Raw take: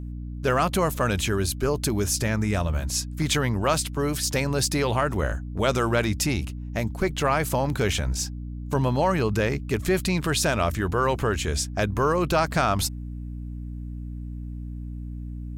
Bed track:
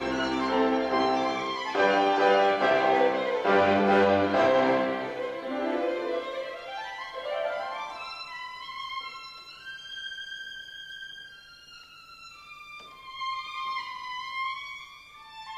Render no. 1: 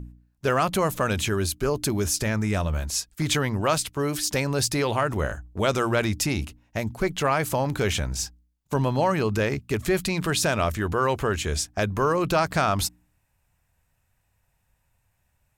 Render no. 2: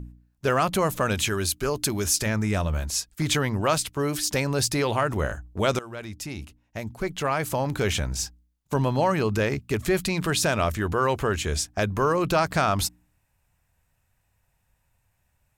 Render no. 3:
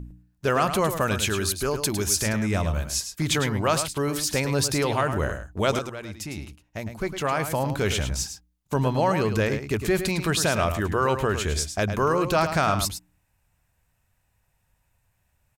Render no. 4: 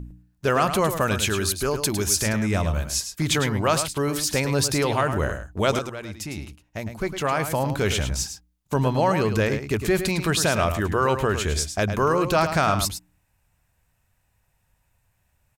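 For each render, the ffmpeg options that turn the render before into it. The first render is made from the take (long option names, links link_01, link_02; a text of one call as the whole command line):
ffmpeg -i in.wav -af "bandreject=frequency=60:width_type=h:width=4,bandreject=frequency=120:width_type=h:width=4,bandreject=frequency=180:width_type=h:width=4,bandreject=frequency=240:width_type=h:width=4,bandreject=frequency=300:width_type=h:width=4" out.wav
ffmpeg -i in.wav -filter_complex "[0:a]asettb=1/sr,asplit=3[link_01][link_02][link_03];[link_01]atrim=end=1.154[link_04];[link_02]atrim=start=1.15:end=2.26,asetpts=PTS-STARTPTS,afade=type=in:duration=0.004:curve=qsin,afade=type=out:start_time=1.106:duration=0.004:curve=qsin,tiltshelf=frequency=970:gain=-3[link_05];[link_03]atrim=start=2.256[link_06];[link_04][link_05]acrossfade=duration=0.004:curve1=hsin:curve2=qsin[link_07];[link_07][link_06]acrossfade=duration=0.004:curve1=qsin:curve2=hsin,asplit=2[link_08][link_09];[link_08]atrim=end=5.79,asetpts=PTS-STARTPTS,afade=type=out:start_time=5.786:duration=0.004:curve=hsin:silence=0.133352[link_10];[link_09]atrim=start=5.79,asetpts=PTS-STARTPTS,afade=type=in:duration=2.17:silence=0.133352[link_11];[link_10][link_11]concat=n=2:v=0:a=1" out.wav
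ffmpeg -i in.wav -af "aecho=1:1:106:0.355" out.wav
ffmpeg -i in.wav -af "volume=1.5dB" out.wav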